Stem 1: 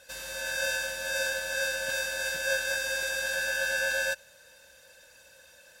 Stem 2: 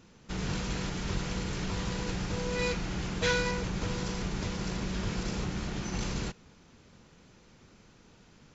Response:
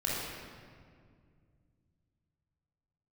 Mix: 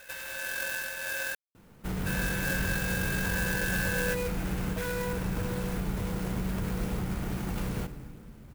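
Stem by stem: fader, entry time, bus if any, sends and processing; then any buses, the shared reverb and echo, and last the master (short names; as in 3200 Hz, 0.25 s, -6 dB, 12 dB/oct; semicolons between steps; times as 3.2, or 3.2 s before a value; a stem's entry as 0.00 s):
-2.0 dB, 0.00 s, muted 1.35–2.06, no send, bell 2200 Hz +14 dB 2.3 oct; compressor 2:1, threshold -35 dBFS, peak gain reduction 11.5 dB
+1.0 dB, 1.55 s, send -16.5 dB, limiter -25.5 dBFS, peak gain reduction 9.5 dB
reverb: on, RT60 2.1 s, pre-delay 22 ms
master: high shelf 4000 Hz -10 dB; clock jitter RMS 0.049 ms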